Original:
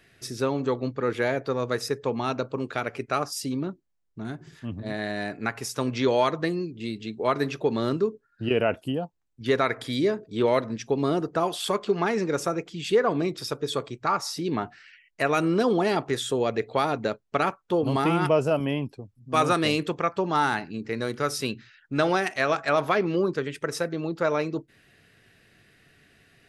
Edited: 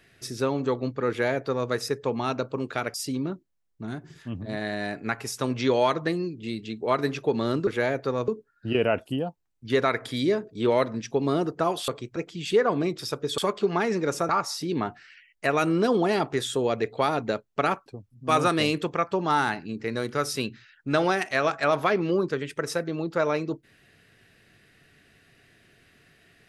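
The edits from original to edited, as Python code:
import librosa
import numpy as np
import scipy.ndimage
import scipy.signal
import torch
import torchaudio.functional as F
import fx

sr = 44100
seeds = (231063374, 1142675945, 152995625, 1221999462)

y = fx.edit(x, sr, fx.duplicate(start_s=1.09, length_s=0.61, to_s=8.04),
    fx.cut(start_s=2.94, length_s=0.37),
    fx.swap(start_s=11.64, length_s=0.91, other_s=13.77, other_length_s=0.28),
    fx.cut(start_s=17.62, length_s=1.29), tone=tone)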